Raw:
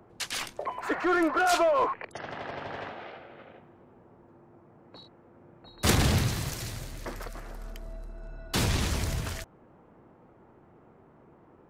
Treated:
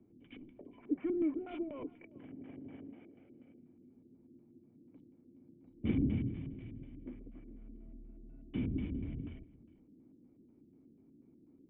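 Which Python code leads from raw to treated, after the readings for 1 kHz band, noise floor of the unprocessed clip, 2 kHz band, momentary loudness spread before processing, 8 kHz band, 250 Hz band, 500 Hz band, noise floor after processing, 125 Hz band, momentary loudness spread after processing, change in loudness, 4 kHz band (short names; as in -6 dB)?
under -25 dB, -58 dBFS, -25.0 dB, 21 LU, under -40 dB, -3.5 dB, -14.0 dB, -65 dBFS, -10.0 dB, 21 LU, -10.0 dB, under -25 dB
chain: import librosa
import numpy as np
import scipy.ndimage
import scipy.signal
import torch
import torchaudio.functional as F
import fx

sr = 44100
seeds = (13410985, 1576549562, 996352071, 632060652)

y = fx.filter_lfo_lowpass(x, sr, shape='square', hz=4.1, low_hz=380.0, high_hz=1600.0, q=1.3)
y = fx.formant_cascade(y, sr, vowel='i')
y = y + 10.0 ** (-21.5 / 20.0) * np.pad(y, (int(407 * sr / 1000.0), 0))[:len(y)]
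y = y * 10.0 ** (1.0 / 20.0)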